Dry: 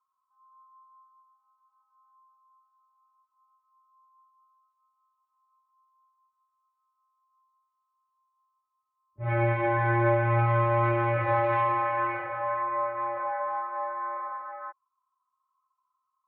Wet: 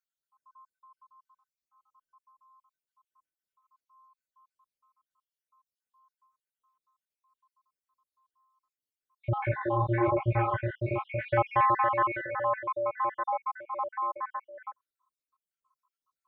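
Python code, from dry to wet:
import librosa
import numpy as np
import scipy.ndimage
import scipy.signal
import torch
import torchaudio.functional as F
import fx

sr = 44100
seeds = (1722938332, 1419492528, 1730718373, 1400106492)

y = fx.spec_dropout(x, sr, seeds[0], share_pct=61)
y = fx.dynamic_eq(y, sr, hz=400.0, q=5.7, threshold_db=-47.0, ratio=4.0, max_db=4)
y = fx.detune_double(y, sr, cents=fx.line((9.38, 44.0), (11.24, 32.0)), at=(9.38, 11.24), fade=0.02)
y = y * librosa.db_to_amplitude(3.0)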